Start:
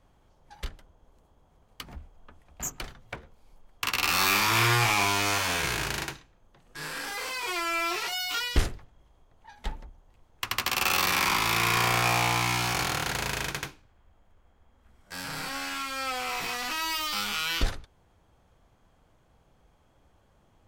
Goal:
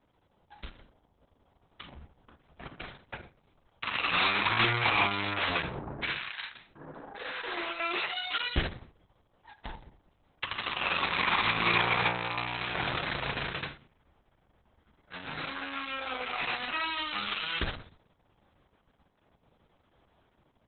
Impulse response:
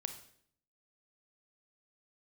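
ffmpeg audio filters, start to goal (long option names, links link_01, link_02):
-filter_complex "[0:a]highpass=frequency=80:poles=1,dynaudnorm=framelen=240:gausssize=5:maxgain=3dB,asettb=1/sr,asplit=3[link_01][link_02][link_03];[link_01]atrim=end=5.624[link_04];[link_02]atrim=start=5.62:end=7.8,asetpts=PTS-STARTPTS,afade=type=in:duration=0.004:curve=qsin,afade=type=out:start_time=2.176:duration=0.004:curve=qsin,acrossover=split=1000[link_05][link_06];[link_06]adelay=400[link_07];[link_05][link_07]amix=inputs=2:normalize=0,atrim=end_sample=96138[link_08];[link_03]atrim=start=7.796[link_09];[link_04][link_08]acrossfade=duration=0.004:curve1=hsin:curve2=qsin[link_10];[link_10][link_09]acrossfade=duration=0.004:curve1=qsin:curve2=hsin[link_11];[1:a]atrim=start_sample=2205,asetrate=66150,aresample=44100[link_12];[link_11][link_12]afir=irnorm=-1:irlink=0,volume=1dB" -ar 48000 -c:a libopus -b:a 6k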